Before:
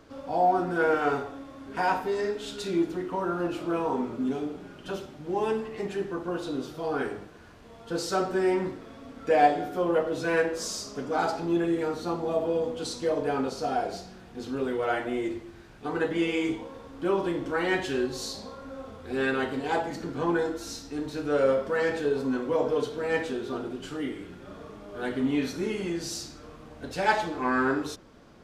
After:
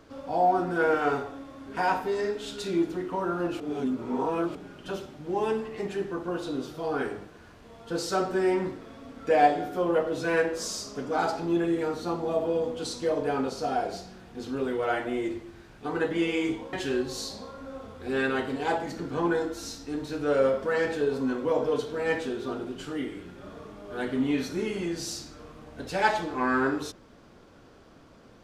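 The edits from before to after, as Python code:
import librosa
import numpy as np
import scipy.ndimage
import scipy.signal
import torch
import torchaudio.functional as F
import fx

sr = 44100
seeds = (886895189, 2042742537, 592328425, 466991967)

y = fx.edit(x, sr, fx.reverse_span(start_s=3.6, length_s=0.95),
    fx.cut(start_s=16.73, length_s=1.04), tone=tone)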